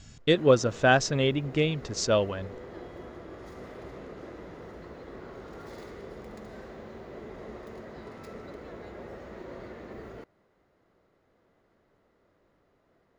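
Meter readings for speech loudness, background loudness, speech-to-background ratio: -25.0 LUFS, -44.5 LUFS, 19.5 dB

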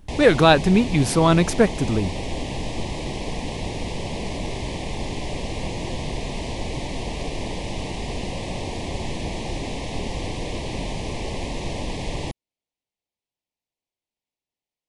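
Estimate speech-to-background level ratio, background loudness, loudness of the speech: 11.5 dB, -30.0 LUFS, -18.5 LUFS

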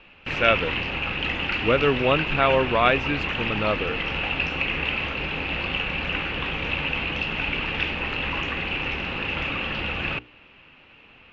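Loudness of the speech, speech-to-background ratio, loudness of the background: -23.5 LUFS, 2.5 dB, -26.0 LUFS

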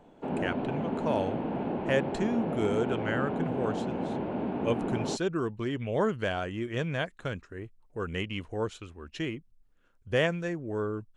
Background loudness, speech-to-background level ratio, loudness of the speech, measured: -33.0 LUFS, 0.5 dB, -32.5 LUFS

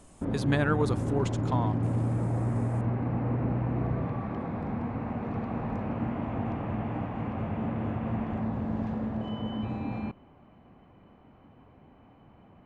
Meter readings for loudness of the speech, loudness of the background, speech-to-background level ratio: -31.0 LUFS, -31.5 LUFS, 0.5 dB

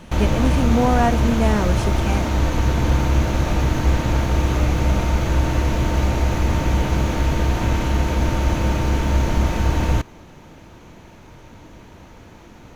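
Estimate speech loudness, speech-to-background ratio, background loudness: -22.5 LUFS, -2.0 dB, -20.5 LUFS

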